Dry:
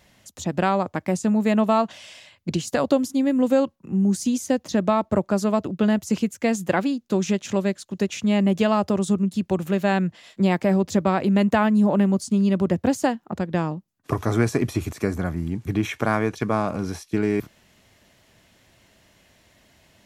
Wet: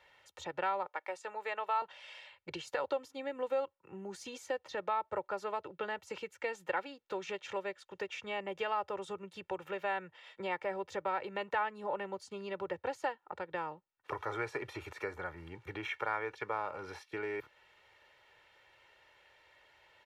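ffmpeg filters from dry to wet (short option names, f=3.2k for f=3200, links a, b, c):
-filter_complex "[0:a]asettb=1/sr,asplit=3[a][b][c];[a]atrim=end=0.864[d];[b]atrim=start=0.86:end=1.82,asetpts=PTS-STARTPTS,afade=t=in:d=0.004:c=qsin,afade=t=out:st=0.956:d=0.004:c=qsin,highpass=500[e];[c]atrim=start=1.816[f];[d][e]acrossfade=d=0.004:c1=hsin:c2=qsin[g];[g][f]acrossfade=d=0.004:c1=qsin:c2=hsin,asettb=1/sr,asplit=3[h][i][j];[h]atrim=end=7.534[k];[i]atrim=start=7.53:end=11.13,asetpts=PTS-STARTPTS,afade=t=in:d=0.004:c=qsin,afade=t=out:st=3.596:d=0.004:c=qsin,bandreject=f=4.2k:w=12[l];[j]atrim=start=11.126[m];[k][l]acrossfade=d=0.004:c1=hsin:c2=qsin[n];[n][m]acrossfade=d=0.004:c1=qsin:c2=hsin,acrossover=split=540 3400:gain=0.112 1 0.1[o][p][q];[o][p][q]amix=inputs=3:normalize=0,aecho=1:1:2.2:0.7,acompressor=threshold=-41dB:ratio=1.5,volume=-3dB"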